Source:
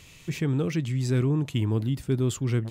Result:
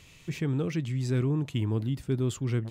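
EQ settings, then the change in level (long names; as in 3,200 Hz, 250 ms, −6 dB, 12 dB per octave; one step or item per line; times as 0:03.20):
high-shelf EQ 7,200 Hz −4.5 dB
−3.0 dB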